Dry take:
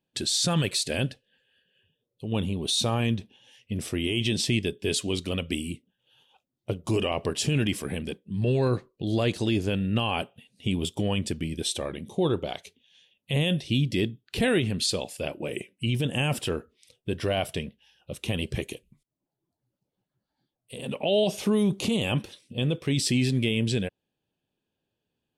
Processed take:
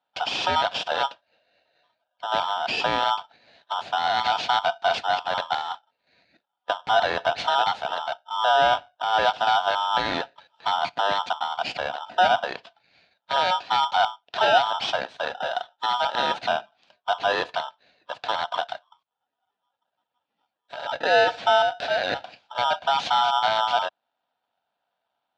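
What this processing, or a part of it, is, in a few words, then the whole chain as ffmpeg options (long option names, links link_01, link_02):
ring modulator pedal into a guitar cabinet: -filter_complex "[0:a]asettb=1/sr,asplit=3[link_01][link_02][link_03];[link_01]atrim=end=21.624[link_04];[link_02]atrim=start=21.62:end=22.24,asetpts=PTS-STARTPTS,afade=type=in:duration=0.004:curve=qsin,afade=type=out:start_time=0.616:duration=0.004:curve=qsin,lowshelf=frequency=290:width_type=q:width=1.5:gain=-13.5[link_05];[link_03]atrim=start=22.236[link_06];[link_04][link_05]acrossfade=duration=0.004:curve1=hsin:curve2=qsin[link_07];[link_07][link_06]acrossfade=duration=0.004:curve1=qsin:curve2=hsin,aeval=exprs='val(0)*sgn(sin(2*PI*1100*n/s))':channel_layout=same,highpass=100,equalizer=frequency=370:width_type=q:width=4:gain=-5,equalizer=frequency=710:width_type=q:width=4:gain=8,equalizer=frequency=1200:width_type=q:width=4:gain=-7,equalizer=frequency=2000:width_type=q:width=4:gain=-7,lowpass=frequency=3800:width=0.5412,lowpass=frequency=3800:width=1.3066,volume=4dB"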